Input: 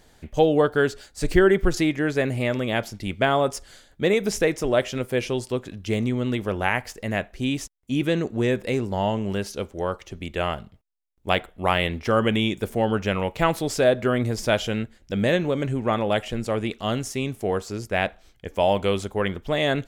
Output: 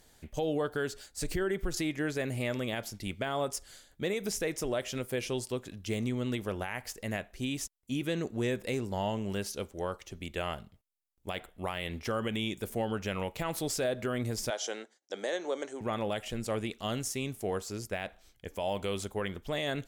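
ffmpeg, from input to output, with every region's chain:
-filter_complex "[0:a]asettb=1/sr,asplit=3[a][b][c];[a]atrim=end=14.504[d];[b]atrim=start=14.5:end=15.81,asetpts=PTS-STARTPTS,afade=t=in:d=0.004:c=qsin,afade=t=out:st=1.306:d=0.004:c=qsin,agate=range=-33dB:threshold=-47dB:ratio=3:release=100:detection=peak,highpass=f=350:w=0.5412,highpass=f=350:w=1.3066,equalizer=f=790:t=q:w=4:g=5,equalizer=f=2.6k:t=q:w=4:g=-9,equalizer=f=6k:t=q:w=4:g=9,lowpass=f=8.9k:w=0.5412,lowpass=f=8.9k:w=1.3066[e];[c]atrim=start=15.806[f];[d][e]acrossfade=d=0.004:c1=hsin:c2=qsin[g];[g][f]acrossfade=d=0.004:c1=qsin:c2=hsin,aemphasis=mode=production:type=cd,alimiter=limit=-15dB:level=0:latency=1:release=117,volume=-7.5dB"

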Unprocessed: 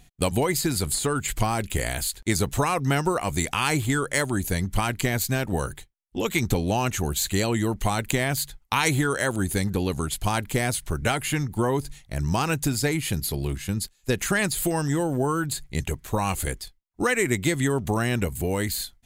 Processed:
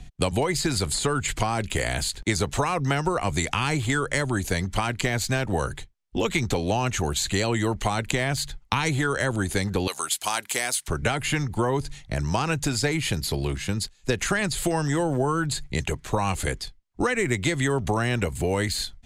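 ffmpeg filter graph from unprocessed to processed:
-filter_complex "[0:a]asettb=1/sr,asplit=3[a][b][c];[a]atrim=end=9.874[d];[b]atrim=start=9.87:end=10.88,asetpts=PTS-STARTPTS,afade=t=in:d=0.004:c=qsin,afade=t=out:st=1.006:d=0.004:c=qsin,deesser=0.3,highpass=790,aemphasis=mode=production:type=50fm[e];[c]atrim=start=10.876[f];[d][e]acrossfade=d=0.004:c1=hsin:c2=qsin[g];[g][f]acrossfade=d=0.004:c1=qsin:c2=hsin,lowpass=7.2k,lowshelf=f=170:g=10.5,acrossover=split=110|400[h][i][j];[h]acompressor=threshold=-41dB:ratio=4[k];[i]acompressor=threshold=-36dB:ratio=4[l];[j]acompressor=threshold=-28dB:ratio=4[m];[k][l][m]amix=inputs=3:normalize=0,volume=5dB"

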